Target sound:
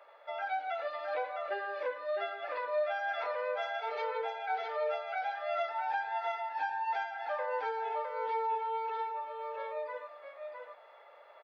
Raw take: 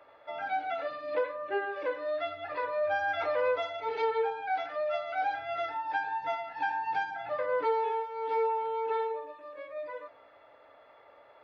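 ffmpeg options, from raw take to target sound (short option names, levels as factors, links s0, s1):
-filter_complex "[0:a]alimiter=level_in=1.41:limit=0.0631:level=0:latency=1:release=347,volume=0.708,highpass=f=470:w=0.5412,highpass=f=470:w=1.3066,asplit=2[s0][s1];[s1]aecho=0:1:659:0.562[s2];[s0][s2]amix=inputs=2:normalize=0"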